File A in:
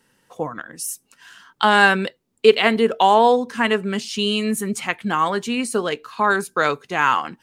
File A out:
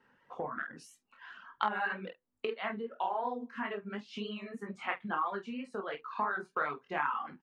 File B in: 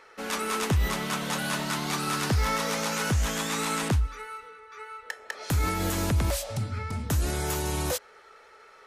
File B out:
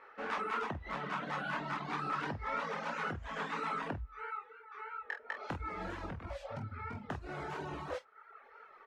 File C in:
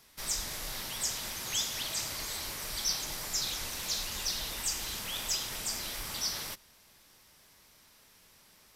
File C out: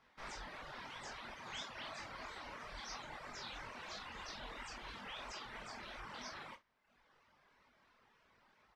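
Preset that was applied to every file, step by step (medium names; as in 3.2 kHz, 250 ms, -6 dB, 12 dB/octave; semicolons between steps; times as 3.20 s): low-pass 1.2 kHz 12 dB/octave; chorus 3 Hz, delay 19 ms, depth 7.3 ms; peaking EQ 240 Hz +6 dB 0.24 oct; compression 8:1, threshold -33 dBFS; tilt shelf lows -8.5 dB, about 720 Hz; on a send: early reflections 20 ms -9.5 dB, 48 ms -7.5 dB; on the sum: reverb removal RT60 0.89 s; trim +1 dB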